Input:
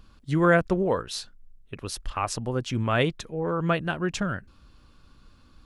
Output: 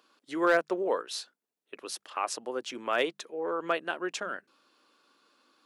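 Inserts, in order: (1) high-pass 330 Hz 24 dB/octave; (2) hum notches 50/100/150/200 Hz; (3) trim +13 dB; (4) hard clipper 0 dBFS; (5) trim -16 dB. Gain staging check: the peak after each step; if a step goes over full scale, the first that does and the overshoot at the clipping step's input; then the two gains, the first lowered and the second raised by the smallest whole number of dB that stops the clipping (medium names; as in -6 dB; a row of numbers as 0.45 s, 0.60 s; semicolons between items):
-8.5 dBFS, -8.5 dBFS, +4.5 dBFS, 0.0 dBFS, -16.0 dBFS; step 3, 4.5 dB; step 3 +8 dB, step 5 -11 dB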